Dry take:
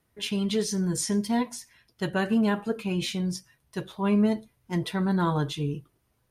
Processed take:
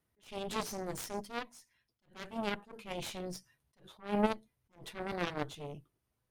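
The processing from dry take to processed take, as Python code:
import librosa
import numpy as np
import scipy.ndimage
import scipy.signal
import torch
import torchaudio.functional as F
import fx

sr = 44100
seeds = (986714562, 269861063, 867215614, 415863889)

y = fx.cheby_harmonics(x, sr, harmonics=(3, 6), levels_db=(-8, -29), full_scale_db=-13.0)
y = fx.rider(y, sr, range_db=5, speed_s=0.5)
y = fx.attack_slew(y, sr, db_per_s=190.0)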